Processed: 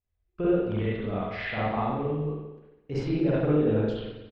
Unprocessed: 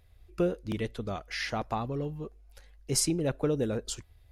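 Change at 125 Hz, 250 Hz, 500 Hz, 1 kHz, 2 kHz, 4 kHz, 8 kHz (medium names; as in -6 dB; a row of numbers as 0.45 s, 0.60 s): +5.5 dB, +6.0 dB, +5.0 dB, +4.5 dB, +3.0 dB, -6.5 dB, under -30 dB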